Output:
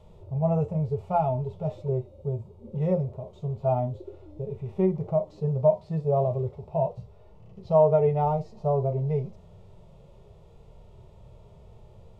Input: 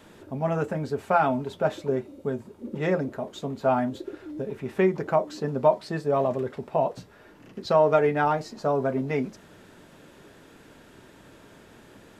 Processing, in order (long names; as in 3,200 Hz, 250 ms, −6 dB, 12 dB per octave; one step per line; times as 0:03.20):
RIAA equalisation playback
phaser with its sweep stopped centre 670 Hz, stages 4
harmonic and percussive parts rebalanced percussive −14 dB